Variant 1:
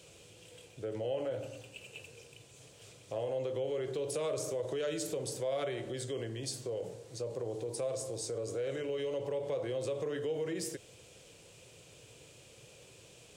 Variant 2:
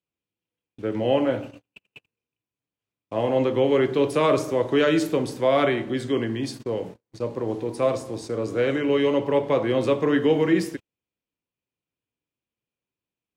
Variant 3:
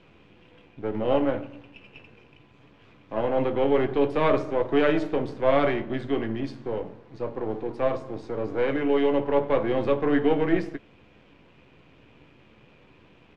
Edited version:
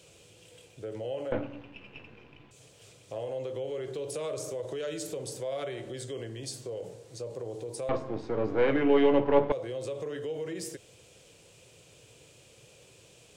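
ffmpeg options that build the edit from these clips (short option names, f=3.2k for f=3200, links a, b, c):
-filter_complex "[2:a]asplit=2[a][b];[0:a]asplit=3[c][d][e];[c]atrim=end=1.322[f];[a]atrim=start=1.318:end=2.512[g];[d]atrim=start=2.508:end=7.892[h];[b]atrim=start=7.888:end=9.522[i];[e]atrim=start=9.518[j];[f][g]acrossfade=d=0.004:c1=hsin:c2=hsin[k];[k][h]acrossfade=d=0.004:c1=hsin:c2=hsin[l];[l][i]acrossfade=d=0.004:c1=hsin:c2=hsin[m];[m][j]acrossfade=d=0.004:c1=hsin:c2=hsin"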